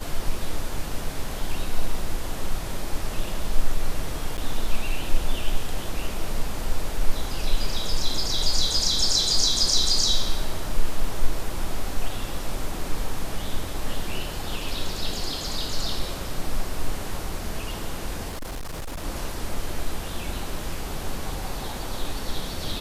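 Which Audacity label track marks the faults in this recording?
4.370000	4.380000	gap 9.2 ms
18.280000	19.040000	clipped -28.5 dBFS

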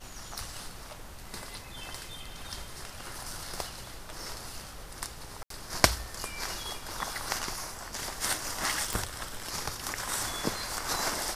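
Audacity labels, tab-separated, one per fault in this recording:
5.430000	5.500000	gap 73 ms
8.930000	8.930000	pop

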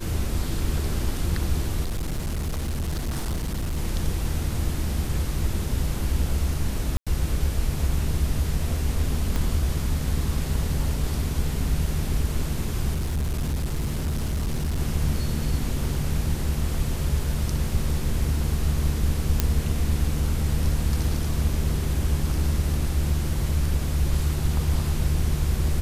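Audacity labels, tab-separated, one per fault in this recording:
1.830000	3.780000	clipped -23.5 dBFS
6.970000	7.070000	gap 96 ms
9.360000	9.360000	pop -13 dBFS
12.940000	14.780000	clipped -22 dBFS
19.400000	19.400000	pop -5 dBFS

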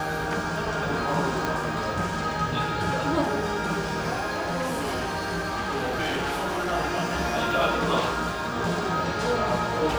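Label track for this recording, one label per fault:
1.450000	1.450000	pop -12 dBFS
4.240000	6.730000	clipped -24 dBFS

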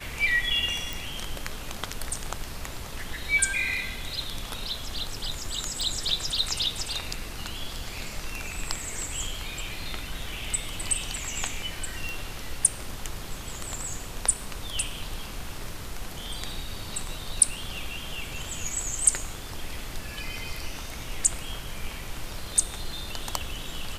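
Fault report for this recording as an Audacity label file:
0.930000	0.930000	pop
5.810000	5.810000	pop
12.090000	12.090000	pop

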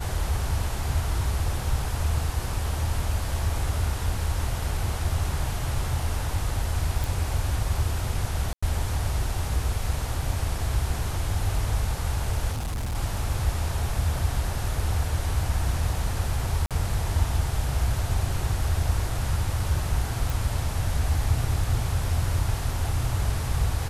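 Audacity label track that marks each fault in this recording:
7.040000	7.040000	pop
8.530000	8.620000	gap 95 ms
12.520000	12.960000	clipped -26 dBFS
16.660000	16.710000	gap 47 ms
20.300000	20.300000	pop

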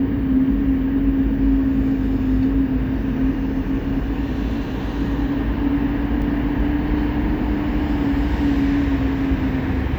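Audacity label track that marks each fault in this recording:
6.220000	6.220000	gap 2.4 ms

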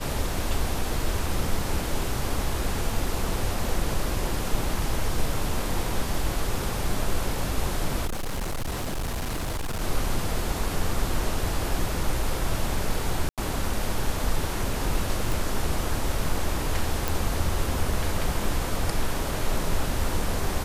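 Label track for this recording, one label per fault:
8.050000	9.820000	clipped -25.5 dBFS
13.290000	13.380000	gap 87 ms
15.320000	15.320000	pop
17.080000	17.080000	pop

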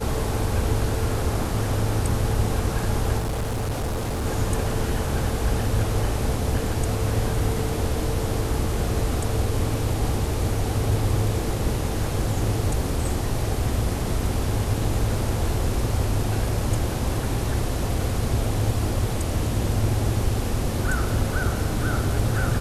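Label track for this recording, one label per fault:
3.180000	4.260000	clipped -22.5 dBFS

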